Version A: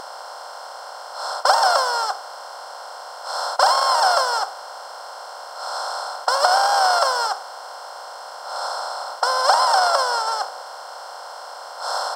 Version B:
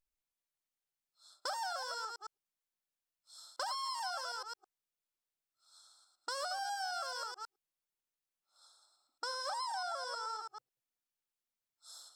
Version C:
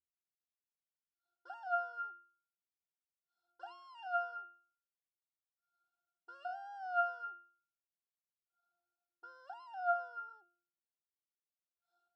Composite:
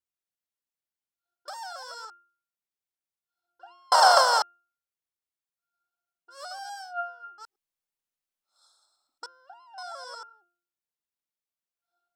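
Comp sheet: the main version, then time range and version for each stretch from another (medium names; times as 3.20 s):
C
1.48–2.10 s: from B
3.92–4.42 s: from A
6.38–6.86 s: from B, crossfade 0.16 s
7.38–9.26 s: from B
9.78–10.23 s: from B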